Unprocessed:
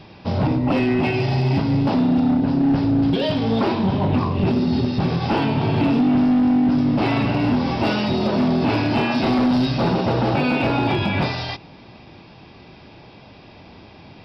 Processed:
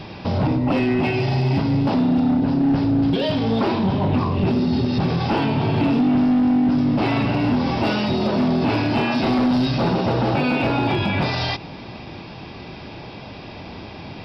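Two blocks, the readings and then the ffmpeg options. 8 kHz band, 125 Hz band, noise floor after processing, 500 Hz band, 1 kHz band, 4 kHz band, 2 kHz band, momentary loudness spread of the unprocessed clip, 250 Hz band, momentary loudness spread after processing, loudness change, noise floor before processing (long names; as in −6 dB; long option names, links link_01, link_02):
can't be measured, 0.0 dB, −37 dBFS, 0.0 dB, 0.0 dB, +0.5 dB, 0.0 dB, 4 LU, −0.5 dB, 18 LU, −0.5 dB, −45 dBFS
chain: -af "alimiter=limit=-22dB:level=0:latency=1:release=96,volume=8dB"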